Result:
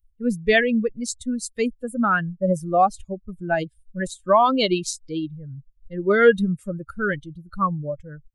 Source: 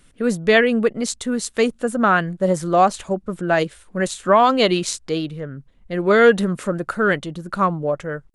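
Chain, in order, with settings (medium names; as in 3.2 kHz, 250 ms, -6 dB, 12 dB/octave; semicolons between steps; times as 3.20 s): expander on every frequency bin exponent 2; bass shelf 73 Hz +12 dB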